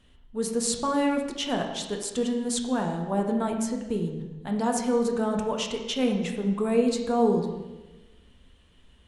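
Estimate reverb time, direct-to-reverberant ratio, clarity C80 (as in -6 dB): 1.1 s, 2.0 dB, 7.5 dB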